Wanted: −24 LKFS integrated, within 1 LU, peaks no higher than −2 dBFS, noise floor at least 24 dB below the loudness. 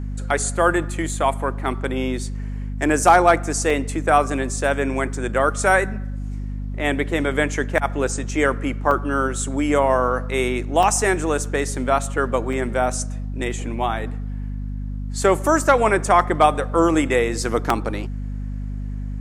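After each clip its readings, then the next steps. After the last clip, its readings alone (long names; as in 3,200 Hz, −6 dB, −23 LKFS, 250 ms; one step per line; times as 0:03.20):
number of dropouts 6; longest dropout 2.7 ms; mains hum 50 Hz; hum harmonics up to 250 Hz; level of the hum −25 dBFS; integrated loudness −21.0 LKFS; sample peak −2.0 dBFS; target loudness −24.0 LKFS
→ repair the gap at 0:03.70/0:04.61/0:08.91/0:10.83/0:12.53/0:17.70, 2.7 ms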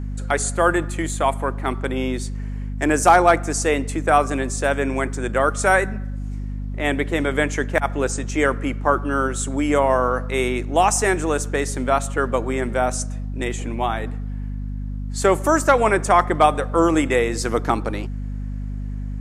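number of dropouts 0; mains hum 50 Hz; hum harmonics up to 250 Hz; level of the hum −25 dBFS
→ hum removal 50 Hz, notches 5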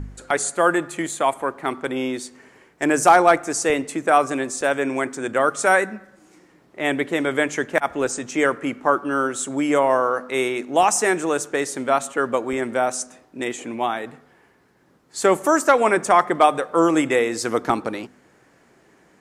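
mains hum none found; integrated loudness −21.0 LKFS; sample peak −2.5 dBFS; target loudness −24.0 LKFS
→ level −3 dB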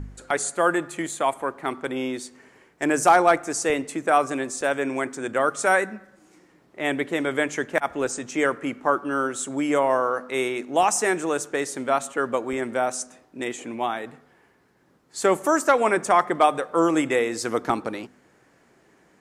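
integrated loudness −24.0 LKFS; sample peak −5.5 dBFS; background noise floor −60 dBFS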